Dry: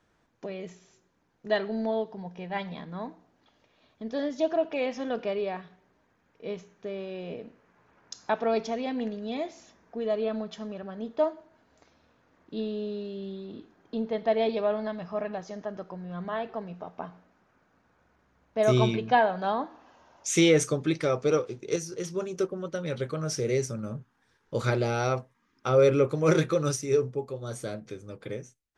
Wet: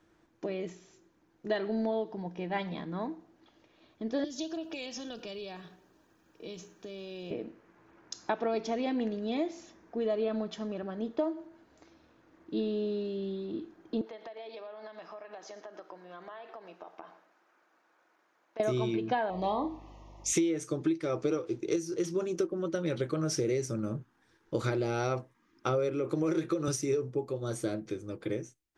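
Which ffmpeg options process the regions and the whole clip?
ffmpeg -i in.wav -filter_complex "[0:a]asettb=1/sr,asplit=3[link_01][link_02][link_03];[link_01]atrim=end=4.244[link_04];[link_02]atrim=start=4.24:end=7.31,asetpts=PTS-STARTPTS,afade=type=in:duration=0.004:curve=qsin,afade=type=out:start_time=3.066:duration=0.004:curve=qsin,highshelf=frequency=4200:gain=11,bandreject=frequency=2100:width=5.9,acrossover=split=140|3000[link_05][link_06][link_07];[link_06]acompressor=threshold=-43dB:ratio=5:attack=3.2:release=140:knee=2.83:detection=peak[link_08];[link_05][link_08][link_07]amix=inputs=3:normalize=0[link_09];[link_03]atrim=start=7.306[link_10];[link_04][link_09]acrossfade=duration=0.004:curve1=hsin:curve2=qsin[link_11];[link_11][link_10]acrossfade=duration=0.004:curve1=qsin:curve2=hsin,asettb=1/sr,asplit=3[link_12][link_13][link_14];[link_12]atrim=end=14.014[link_15];[link_13]atrim=start=14.01:end=18.6,asetpts=PTS-STARTPTS,afade=type=in:duration=0.004:curve=qsin,afade=type=out:start_time=4.586:duration=0.004:curve=qsin,highpass=610,acompressor=threshold=-41dB:ratio=16:attack=3.2:release=140:knee=1:detection=peak,aecho=1:1:116:0.15,atrim=end_sample=202419[link_16];[link_14]atrim=start=18.596[link_17];[link_15][link_16]acrossfade=duration=0.004:curve1=hsin:curve2=qsin[link_18];[link_18][link_17]acrossfade=duration=0.004:curve1=qsin:curve2=hsin,asettb=1/sr,asplit=3[link_19][link_20][link_21];[link_19]atrim=end=19.304[link_22];[link_20]atrim=start=19.3:end=20.33,asetpts=PTS-STARTPTS,afade=type=in:duration=0.004:curve=qsin,afade=type=out:start_time=1.026:duration=0.004:curve=qsin,aeval=exprs='val(0)+0.00224*(sin(2*PI*50*n/s)+sin(2*PI*2*50*n/s)/2+sin(2*PI*3*50*n/s)/3+sin(2*PI*4*50*n/s)/4+sin(2*PI*5*50*n/s)/5)':channel_layout=same,asuperstop=centerf=1500:order=8:qfactor=2.4,asplit=2[link_23][link_24];[link_24]adelay=38,volume=-8.5dB[link_25];[link_23][link_25]amix=inputs=2:normalize=0,atrim=end_sample=45423[link_26];[link_21]atrim=start=20.326[link_27];[link_22][link_26]acrossfade=duration=0.004:curve1=hsin:curve2=qsin[link_28];[link_28][link_27]acrossfade=duration=0.004:curve1=qsin:curve2=hsin,asettb=1/sr,asplit=3[link_29][link_30][link_31];[link_29]atrim=end=25.894[link_32];[link_30]atrim=start=25.89:end=26.68,asetpts=PTS-STARTPTS,afade=type=in:duration=0.004:curve=qsin,afade=type=out:start_time=0.786:duration=0.004:curve=qsin,highpass=130,acompressor=threshold=-24dB:ratio=3:attack=3.2:release=140:knee=1:detection=peak[link_33];[link_31]atrim=start=26.676[link_34];[link_32][link_33]acrossfade=duration=0.004:curve1=hsin:curve2=qsin[link_35];[link_35][link_34]acrossfade=duration=0.004:curve1=qsin:curve2=hsin,equalizer=frequency=330:width_type=o:width=0.21:gain=14.5,acompressor=threshold=-26dB:ratio=12" out.wav

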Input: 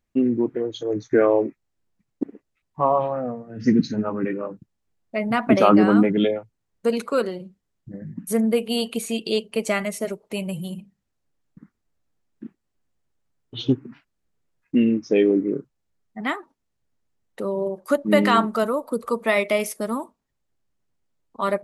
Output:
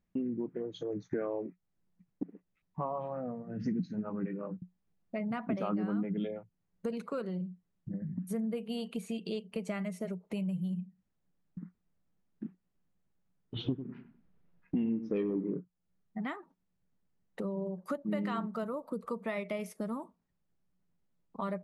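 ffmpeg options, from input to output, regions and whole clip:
ffmpeg -i in.wav -filter_complex "[0:a]asettb=1/sr,asplit=3[link_01][link_02][link_03];[link_01]atrim=end=13.564[link_04];[link_02]atrim=start=13.56:end=15.59,asetpts=PTS-STARTPTS,afade=type=in:duration=0.004:curve=qsin,afade=type=out:start_time=2.026:duration=0.004:curve=qsin,lowpass=3300,acontrast=81,asplit=2[link_05][link_06];[link_06]adelay=97,lowpass=frequency=1100:poles=1,volume=-11.5dB,asplit=2[link_07][link_08];[link_08]adelay=97,lowpass=frequency=1100:poles=1,volume=0.28,asplit=2[link_09][link_10];[link_10]adelay=97,lowpass=frequency=1100:poles=1,volume=0.28[link_11];[link_05][link_07][link_09][link_11]amix=inputs=4:normalize=0,atrim=end_sample=89523[link_12];[link_03]atrim=start=15.586[link_13];[link_04][link_12]acrossfade=duration=0.004:curve1=hsin:curve2=qsin[link_14];[link_14][link_13]acrossfade=duration=0.004:curve1=qsin:curve2=hsin,equalizer=frequency=180:width=4.7:gain=15,acompressor=threshold=-33dB:ratio=3,highshelf=frequency=3800:gain=-9.5,volume=-3.5dB" out.wav

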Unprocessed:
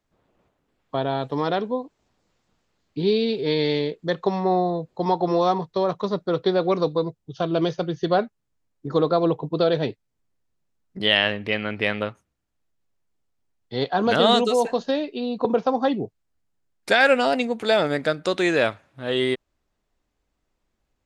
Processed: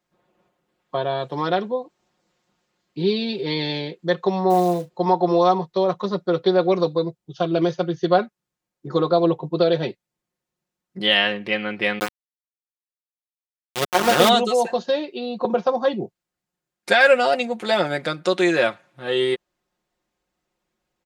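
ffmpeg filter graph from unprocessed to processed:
ffmpeg -i in.wav -filter_complex "[0:a]asettb=1/sr,asplit=3[link_01][link_02][link_03];[link_01]atrim=end=4.504[link_04];[link_02]atrim=start=4.5:end=4.9,asetpts=PTS-STARTPTS,afade=type=in:duration=0.004:curve=qsin,afade=type=out:start_time=0.396:duration=0.004:curve=qsin,asplit=2[link_05][link_06];[link_06]adelay=34,volume=-12dB[link_07];[link_05][link_07]amix=inputs=2:normalize=0,atrim=end_sample=17640,acrusher=bits=5:mode=log:mix=0:aa=0.000001[link_08];[link_03]atrim=start=4.896[link_09];[link_04][link_08]acrossfade=duration=0.004:curve1=hsin:curve2=qsin[link_10];[link_10][link_09]acrossfade=duration=0.004:curve1=qsin:curve2=hsin,asettb=1/sr,asplit=3[link_11][link_12][link_13];[link_11]atrim=end=11.994[link_14];[link_12]atrim=start=11.99:end=14.29,asetpts=PTS-STARTPTS,afade=type=in:duration=0.004:curve=qsin,afade=type=out:start_time=2.296:duration=0.004:curve=qsin,equalizer=frequency=410:width=0.99:gain=5,aeval=exprs='val(0)*gte(abs(val(0)),0.168)':channel_layout=same[link_15];[link_13]atrim=start=14.286[link_16];[link_14][link_15]acrossfade=duration=0.004:curve1=hsin:curve2=qsin[link_17];[link_17][link_16]acrossfade=duration=0.004:curve1=qsin:curve2=hsin,highpass=frequency=170:poles=1,aecho=1:1:5.6:0.68" out.wav

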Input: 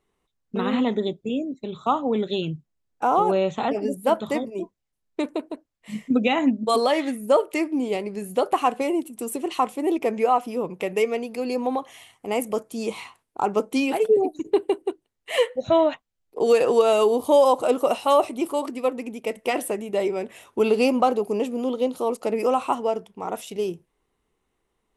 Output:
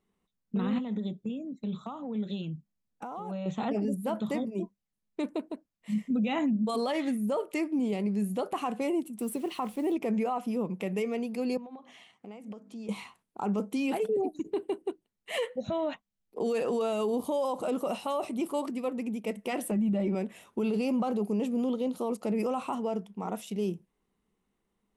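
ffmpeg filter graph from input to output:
ffmpeg -i in.wav -filter_complex "[0:a]asettb=1/sr,asplit=3[link_01][link_02][link_03];[link_01]atrim=end=0.784[link_04];[link_02]atrim=start=0.78:end=3.46,asetpts=PTS-STARTPTS,afade=type=in:duration=0.004:curve=qsin,afade=type=out:start_time=2.676:duration=0.004:curve=qsin,bandreject=frequency=380:width=9.7,acompressor=threshold=-31dB:ratio=5:attack=3.2:release=140:knee=1:detection=peak[link_05];[link_03]atrim=start=3.456[link_06];[link_04][link_05]acrossfade=duration=0.004:curve1=hsin:curve2=qsin[link_07];[link_07][link_06]acrossfade=duration=0.004:curve1=qsin:curve2=hsin,asettb=1/sr,asplit=3[link_08][link_09][link_10];[link_08]atrim=end=9.194[link_11];[link_09]atrim=start=9.19:end=9.93,asetpts=PTS-STARTPTS,afade=type=in:duration=0.004:curve=qsin,afade=type=out:start_time=0.736:duration=0.004:curve=qsin,equalizer=frequency=6900:width=2.7:gain=-7,acrusher=bits=9:dc=4:mix=0:aa=0.000001[link_12];[link_10]atrim=start=9.926[link_13];[link_11][link_12]acrossfade=duration=0.004:curve1=hsin:curve2=qsin[link_14];[link_14][link_13]acrossfade=duration=0.004:curve1=qsin:curve2=hsin,asettb=1/sr,asplit=3[link_15][link_16][link_17];[link_15]atrim=end=11.574[link_18];[link_16]atrim=start=11.57:end=12.89,asetpts=PTS-STARTPTS,afade=type=in:duration=0.004:curve=qsin,afade=type=out:start_time=1.316:duration=0.004:curve=qsin,highpass=150,lowpass=5100,bandreject=frequency=50:width_type=h:width=6,bandreject=frequency=100:width_type=h:width=6,bandreject=frequency=150:width_type=h:width=6,bandreject=frequency=200:width_type=h:width=6,bandreject=frequency=250:width_type=h:width=6,bandreject=frequency=300:width_type=h:width=6,acompressor=threshold=-39dB:ratio=6:attack=3.2:release=140:knee=1:detection=peak[link_19];[link_17]atrim=start=12.886[link_20];[link_18][link_19]acrossfade=duration=0.004:curve1=hsin:curve2=qsin[link_21];[link_21][link_20]acrossfade=duration=0.004:curve1=qsin:curve2=hsin,asettb=1/sr,asplit=3[link_22][link_23][link_24];[link_22]atrim=end=19.714[link_25];[link_23]atrim=start=19.71:end=20.15,asetpts=PTS-STARTPTS,afade=type=in:duration=0.004:curve=qsin,afade=type=out:start_time=0.436:duration=0.004:curve=qsin,bass=frequency=250:gain=12,treble=frequency=4000:gain=-10,aecho=1:1:3.5:0.67,atrim=end_sample=19404[link_26];[link_24]atrim=start=20.146[link_27];[link_25][link_26]acrossfade=duration=0.004:curve1=hsin:curve2=qsin[link_28];[link_28][link_27]acrossfade=duration=0.004:curve1=qsin:curve2=hsin,equalizer=frequency=200:width_type=o:width=0.5:gain=13.5,alimiter=limit=-16dB:level=0:latency=1:release=25,volume=-6.5dB" out.wav

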